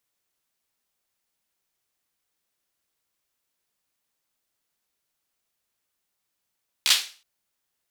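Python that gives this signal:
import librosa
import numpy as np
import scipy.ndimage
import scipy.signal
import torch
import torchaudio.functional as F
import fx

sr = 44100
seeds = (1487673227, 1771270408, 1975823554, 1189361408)

y = fx.drum_clap(sr, seeds[0], length_s=0.37, bursts=4, spacing_ms=14, hz=3600.0, decay_s=0.37)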